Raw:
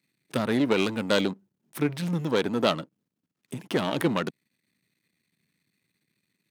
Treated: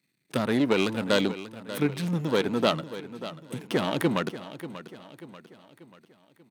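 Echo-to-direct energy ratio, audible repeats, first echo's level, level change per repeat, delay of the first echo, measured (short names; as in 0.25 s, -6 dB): -12.5 dB, 4, -13.5 dB, -6.5 dB, 0.588 s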